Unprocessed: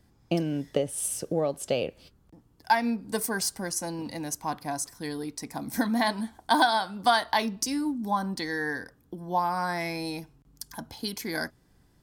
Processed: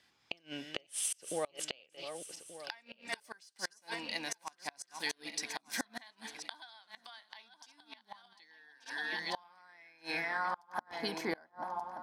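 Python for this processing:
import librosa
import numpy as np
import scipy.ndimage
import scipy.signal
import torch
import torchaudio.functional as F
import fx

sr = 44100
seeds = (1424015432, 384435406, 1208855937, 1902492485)

y = fx.reverse_delay_fb(x, sr, ms=590, feedback_pct=57, wet_db=-10.0)
y = fx.filter_sweep_bandpass(y, sr, from_hz=2900.0, to_hz=830.0, start_s=9.31, end_s=11.49, q=1.3)
y = fx.gate_flip(y, sr, shuts_db=-31.0, range_db=-31)
y = y * 10.0 ** (8.5 / 20.0)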